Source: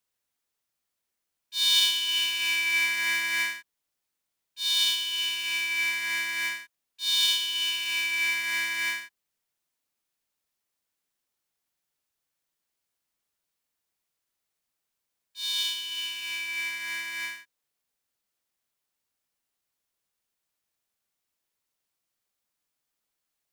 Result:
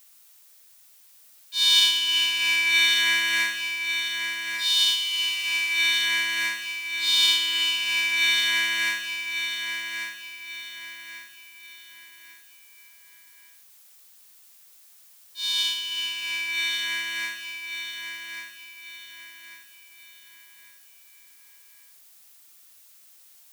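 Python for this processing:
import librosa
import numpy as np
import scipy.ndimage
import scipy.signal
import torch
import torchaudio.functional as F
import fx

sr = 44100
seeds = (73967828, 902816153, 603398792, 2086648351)

p1 = fx.high_shelf(x, sr, hz=9500.0, db=-8.0)
p2 = fx.dmg_noise_colour(p1, sr, seeds[0], colour='blue', level_db=-59.0)
p3 = p2 + fx.echo_feedback(p2, sr, ms=1142, feedback_pct=36, wet_db=-7.0, dry=0)
y = p3 * librosa.db_to_amplitude(4.5)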